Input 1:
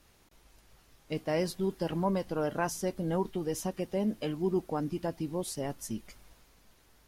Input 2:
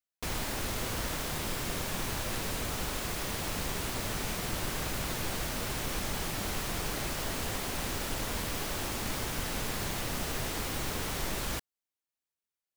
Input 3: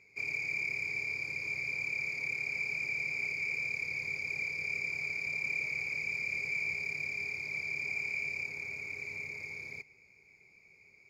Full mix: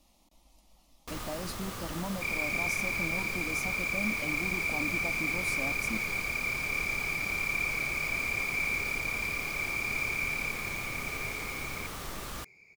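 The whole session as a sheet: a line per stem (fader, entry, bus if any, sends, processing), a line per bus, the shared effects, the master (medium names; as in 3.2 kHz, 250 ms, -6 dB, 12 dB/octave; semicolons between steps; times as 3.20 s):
+1.0 dB, 0.00 s, no send, treble shelf 8.1 kHz -4.5 dB; peak limiter -27 dBFS, peak gain reduction 10 dB; static phaser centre 420 Hz, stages 6
-6.0 dB, 0.85 s, no send, peaking EQ 1.2 kHz +9 dB 0.21 oct
+3.0 dB, 2.05 s, no send, none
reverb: none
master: none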